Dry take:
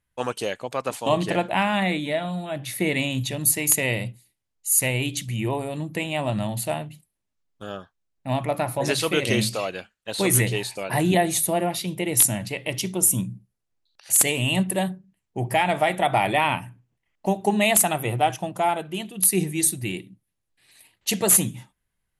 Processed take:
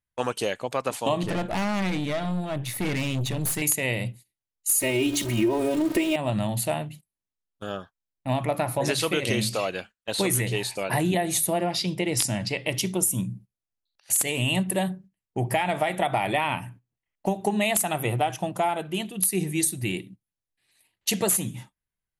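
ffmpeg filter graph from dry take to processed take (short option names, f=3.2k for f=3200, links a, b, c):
-filter_complex "[0:a]asettb=1/sr,asplit=3[a][b][c];[a]atrim=end=1.234[d];[b]atrim=start=1.23:end=3.62,asetpts=PTS-STARTPTS,afade=t=in:d=0.004:c=qsin,afade=t=out:st=2.386:d=0.004:c=qsin,lowshelf=f=190:g=9.5,aeval=exprs='(tanh(17.8*val(0)+0.5)-tanh(0.5))/17.8':c=same[e];[c]atrim=start=3.616[f];[d][e]acrossfade=d=0.004:c1=hsin:c2=qsin[g];[g][f]acrossfade=d=0.004:c1=qsin:c2=hsin,asettb=1/sr,asplit=3[h][i][j];[h]atrim=end=4.694[k];[i]atrim=start=4.69:end=6.16,asetpts=PTS-STARTPTS,afade=t=in:d=0.004:c=qsin,afade=t=out:st=1.466:d=0.004:c=qsin,aeval=exprs='val(0)+0.5*0.0299*sgn(val(0))':c=same,equalizer=f=380:w=2.1:g=11,aecho=1:1:3.2:0.95,atrim=end_sample=64827[l];[j]atrim=start=6.156[m];[k][l]acrossfade=d=0.004:c1=hsin:c2=qsin[n];[n][m]acrossfade=d=0.004:c1=qsin:c2=hsin,asettb=1/sr,asplit=3[o][p][q];[o]atrim=end=11.594[r];[p]atrim=start=11.59:end=12.67,asetpts=PTS-STARTPTS,afade=t=in:d=0.004:c=qsin,afade=t=out:st=1.076:d=0.004:c=qsin,lowpass=7.4k,equalizer=f=5k:w=5.7:g=12.5[s];[q]atrim=start=12.666[t];[r][s]acrossfade=d=0.004:c1=hsin:c2=qsin[u];[u][t]acrossfade=d=0.004:c1=qsin:c2=hsin,agate=range=-13dB:threshold=-45dB:ratio=16:detection=peak,acompressor=threshold=-22dB:ratio=6,volume=1.5dB"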